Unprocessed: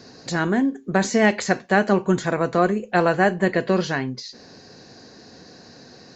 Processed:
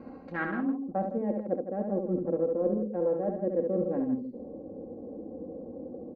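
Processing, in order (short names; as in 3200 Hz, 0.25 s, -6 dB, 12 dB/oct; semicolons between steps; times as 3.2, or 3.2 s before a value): Wiener smoothing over 25 samples; comb 3.7 ms, depth 76%; reverse; compressor 12:1, threshold -30 dBFS, peak gain reduction 20 dB; reverse; loudspeakers at several distances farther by 24 m -5 dB, 55 m -9 dB; low-pass sweep 1900 Hz -> 490 Hz, 0.46–1.23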